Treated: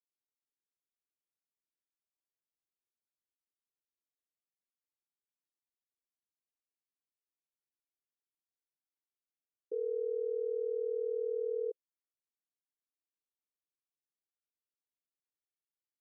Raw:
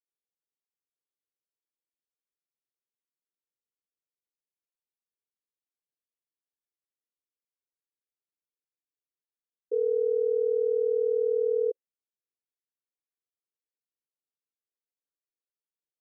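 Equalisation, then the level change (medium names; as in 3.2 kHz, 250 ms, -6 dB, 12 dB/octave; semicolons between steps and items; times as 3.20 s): dynamic bell 300 Hz, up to -5 dB, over -38 dBFS, Q 1.3; band-pass filter 310 Hz, Q 1.7; -2.5 dB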